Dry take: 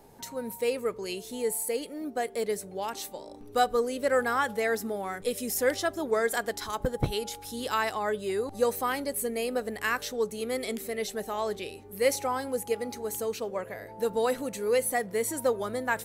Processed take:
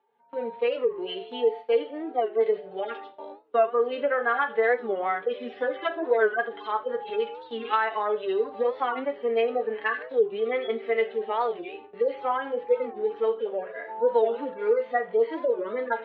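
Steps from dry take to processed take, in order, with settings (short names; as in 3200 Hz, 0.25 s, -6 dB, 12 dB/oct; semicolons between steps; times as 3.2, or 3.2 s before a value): median-filter separation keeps harmonic; elliptic low-pass 3300 Hz, stop band 60 dB; gate with hold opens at -38 dBFS; HPF 490 Hz 12 dB/oct; compressor 4:1, threshold -31 dBFS, peak gain reduction 9.5 dB; reverb RT60 0.30 s, pre-delay 4 ms, DRR 4.5 dB; record warp 45 rpm, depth 160 cents; gain +8.5 dB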